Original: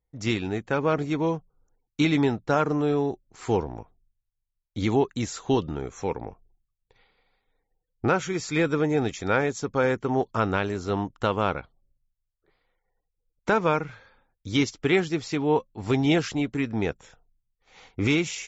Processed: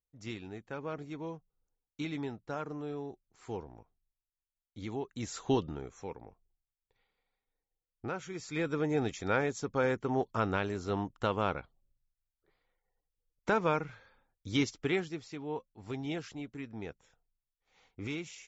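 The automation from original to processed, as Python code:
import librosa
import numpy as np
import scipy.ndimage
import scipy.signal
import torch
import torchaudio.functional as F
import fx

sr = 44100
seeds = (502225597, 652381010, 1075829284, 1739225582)

y = fx.gain(x, sr, db=fx.line((5.04, -15.5), (5.41, -4.0), (6.19, -15.0), (8.12, -15.0), (8.96, -6.5), (14.75, -6.5), (15.31, -15.5)))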